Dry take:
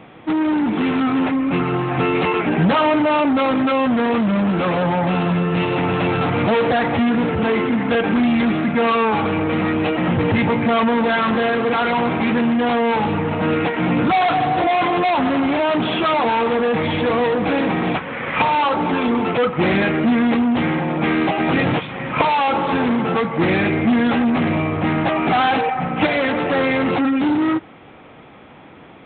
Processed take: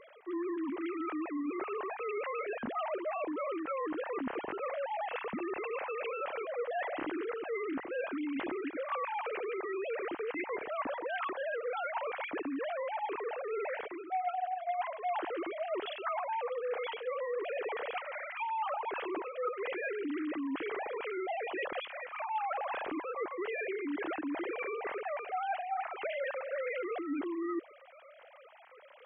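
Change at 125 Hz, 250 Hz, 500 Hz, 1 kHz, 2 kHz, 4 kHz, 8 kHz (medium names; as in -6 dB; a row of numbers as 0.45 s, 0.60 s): under -40 dB, -22.5 dB, -15.5 dB, -17.0 dB, -17.5 dB, -22.0 dB, no reading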